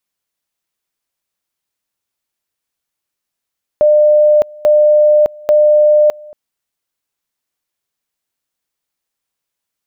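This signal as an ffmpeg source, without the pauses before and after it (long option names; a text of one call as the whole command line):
ffmpeg -f lavfi -i "aevalsrc='pow(10,(-5.5-25.5*gte(mod(t,0.84),0.61))/20)*sin(2*PI*601*t)':duration=2.52:sample_rate=44100" out.wav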